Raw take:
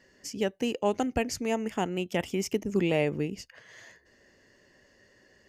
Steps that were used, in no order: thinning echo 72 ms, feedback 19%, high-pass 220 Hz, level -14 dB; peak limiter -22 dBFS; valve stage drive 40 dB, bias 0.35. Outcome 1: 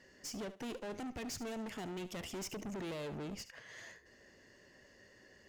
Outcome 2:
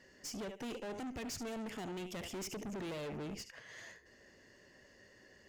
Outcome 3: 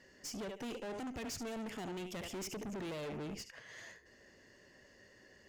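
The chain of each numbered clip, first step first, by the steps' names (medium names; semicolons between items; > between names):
peak limiter > valve stage > thinning echo; peak limiter > thinning echo > valve stage; thinning echo > peak limiter > valve stage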